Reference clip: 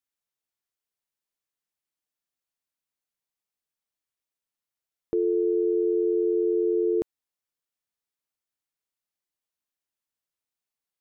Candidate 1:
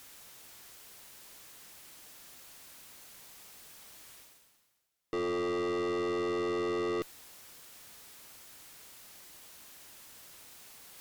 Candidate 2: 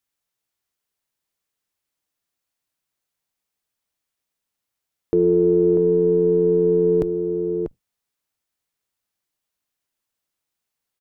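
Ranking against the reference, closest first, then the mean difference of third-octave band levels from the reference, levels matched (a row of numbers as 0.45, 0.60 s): 2, 1; 7.5, 20.0 dB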